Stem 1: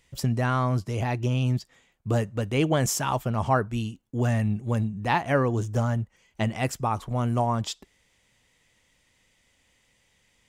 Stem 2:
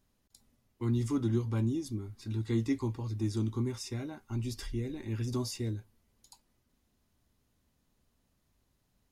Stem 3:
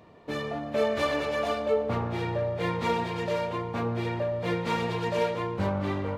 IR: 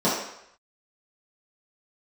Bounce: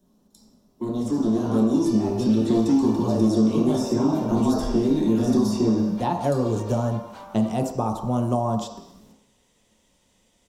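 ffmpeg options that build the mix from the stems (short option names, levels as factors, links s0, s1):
-filter_complex "[0:a]adelay=950,volume=0.376,asplit=2[s0][s1];[s1]volume=0.1[s2];[1:a]asoftclip=type=tanh:threshold=0.0282,volume=1.33,asplit=3[s3][s4][s5];[s4]volume=0.335[s6];[2:a]highpass=f=750:w=0.5412,highpass=f=750:w=1.3066,acompressor=threshold=0.0158:ratio=6,adelay=1550,volume=0.266[s7];[s5]apad=whole_len=504436[s8];[s0][s8]sidechaincompress=threshold=0.00501:ratio=8:attack=16:release=350[s9];[3:a]atrim=start_sample=2205[s10];[s2][s6]amix=inputs=2:normalize=0[s11];[s11][s10]afir=irnorm=-1:irlink=0[s12];[s9][s3][s7][s12]amix=inputs=4:normalize=0,acrossover=split=190|1200|3100[s13][s14][s15][s16];[s13]acompressor=threshold=0.0158:ratio=4[s17];[s14]acompressor=threshold=0.0251:ratio=4[s18];[s15]acompressor=threshold=0.002:ratio=4[s19];[s16]acompressor=threshold=0.00282:ratio=4[s20];[s17][s18][s19][s20]amix=inputs=4:normalize=0,equalizer=f=2000:w=1.6:g=-10.5,dynaudnorm=f=780:g=3:m=3.55"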